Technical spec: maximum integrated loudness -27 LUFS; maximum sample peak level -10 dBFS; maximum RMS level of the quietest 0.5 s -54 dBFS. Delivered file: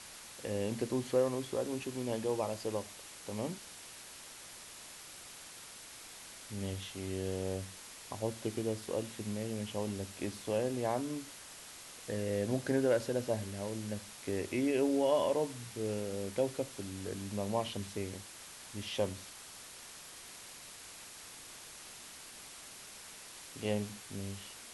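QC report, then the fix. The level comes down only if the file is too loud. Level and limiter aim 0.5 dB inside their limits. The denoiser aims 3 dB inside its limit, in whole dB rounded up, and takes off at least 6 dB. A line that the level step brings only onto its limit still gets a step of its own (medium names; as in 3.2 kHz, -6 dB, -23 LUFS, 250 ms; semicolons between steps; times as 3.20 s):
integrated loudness -38.0 LUFS: pass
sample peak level -18.0 dBFS: pass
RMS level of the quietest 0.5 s -51 dBFS: fail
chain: noise reduction 6 dB, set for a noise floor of -51 dBFS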